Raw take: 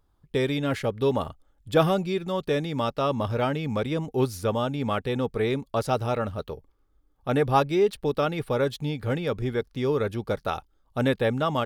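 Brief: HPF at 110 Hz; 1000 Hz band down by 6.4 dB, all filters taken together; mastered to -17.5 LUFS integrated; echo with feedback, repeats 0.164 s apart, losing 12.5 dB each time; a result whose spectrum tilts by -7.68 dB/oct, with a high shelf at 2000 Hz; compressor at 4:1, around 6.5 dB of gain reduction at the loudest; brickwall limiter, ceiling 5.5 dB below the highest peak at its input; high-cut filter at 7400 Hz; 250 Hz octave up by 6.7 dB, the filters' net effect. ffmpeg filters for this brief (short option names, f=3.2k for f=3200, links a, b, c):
-af "highpass=110,lowpass=7.4k,equalizer=f=250:t=o:g=9,equalizer=f=1k:t=o:g=-7.5,highshelf=f=2k:g=-8,acompressor=threshold=-22dB:ratio=4,alimiter=limit=-19.5dB:level=0:latency=1,aecho=1:1:164|328|492:0.237|0.0569|0.0137,volume=11.5dB"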